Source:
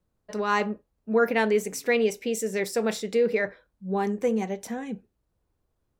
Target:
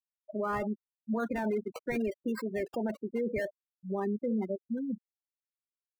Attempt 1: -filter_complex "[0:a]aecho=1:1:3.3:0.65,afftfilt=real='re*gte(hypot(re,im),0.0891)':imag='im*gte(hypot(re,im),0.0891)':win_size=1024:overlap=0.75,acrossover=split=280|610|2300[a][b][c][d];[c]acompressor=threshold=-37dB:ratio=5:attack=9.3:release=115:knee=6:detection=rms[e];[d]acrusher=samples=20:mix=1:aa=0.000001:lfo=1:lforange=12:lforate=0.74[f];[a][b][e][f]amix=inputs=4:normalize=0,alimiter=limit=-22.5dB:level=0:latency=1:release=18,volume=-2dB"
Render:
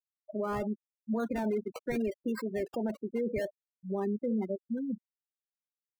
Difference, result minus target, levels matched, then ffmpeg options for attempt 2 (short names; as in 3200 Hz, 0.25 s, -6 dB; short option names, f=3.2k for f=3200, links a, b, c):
compressor: peak gain reduction +7.5 dB
-filter_complex "[0:a]aecho=1:1:3.3:0.65,afftfilt=real='re*gte(hypot(re,im),0.0891)':imag='im*gte(hypot(re,im),0.0891)':win_size=1024:overlap=0.75,acrossover=split=280|610|2300[a][b][c][d];[c]acompressor=threshold=-27.5dB:ratio=5:attack=9.3:release=115:knee=6:detection=rms[e];[d]acrusher=samples=20:mix=1:aa=0.000001:lfo=1:lforange=12:lforate=0.74[f];[a][b][e][f]amix=inputs=4:normalize=0,alimiter=limit=-22.5dB:level=0:latency=1:release=18,volume=-2dB"